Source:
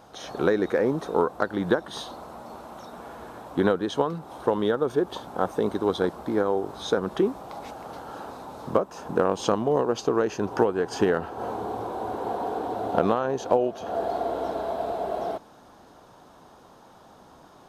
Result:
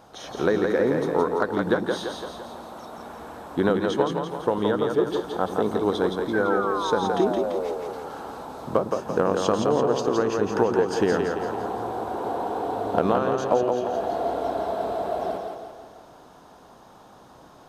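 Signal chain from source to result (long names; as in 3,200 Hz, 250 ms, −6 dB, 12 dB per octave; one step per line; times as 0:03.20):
sound drawn into the spectrogram fall, 0:06.33–0:07.73, 410–1,600 Hz −30 dBFS
echo with a time of its own for lows and highs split 310 Hz, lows 105 ms, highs 169 ms, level −4 dB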